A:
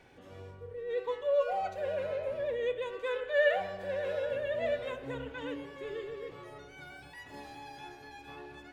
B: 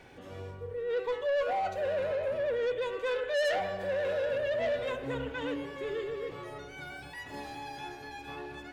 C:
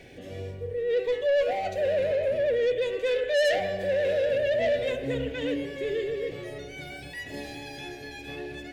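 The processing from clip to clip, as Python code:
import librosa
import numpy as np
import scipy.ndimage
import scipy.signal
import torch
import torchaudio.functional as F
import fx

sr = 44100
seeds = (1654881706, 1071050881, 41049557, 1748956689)

y1 = 10.0 ** (-31.5 / 20.0) * np.tanh(x / 10.0 ** (-31.5 / 20.0))
y1 = y1 * 10.0 ** (5.5 / 20.0)
y2 = fx.band_shelf(y1, sr, hz=1100.0, db=-14.5, octaves=1.0)
y2 = y2 * 10.0 ** (6.0 / 20.0)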